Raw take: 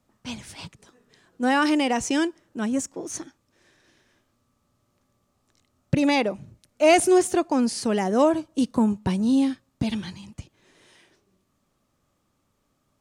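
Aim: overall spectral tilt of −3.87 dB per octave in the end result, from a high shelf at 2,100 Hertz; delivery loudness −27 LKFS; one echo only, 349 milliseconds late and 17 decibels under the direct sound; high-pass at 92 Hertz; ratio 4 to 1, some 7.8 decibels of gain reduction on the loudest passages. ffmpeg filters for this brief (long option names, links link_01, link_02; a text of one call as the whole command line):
ffmpeg -i in.wav -af "highpass=92,highshelf=frequency=2100:gain=4,acompressor=threshold=-22dB:ratio=4,aecho=1:1:349:0.141,volume=0.5dB" out.wav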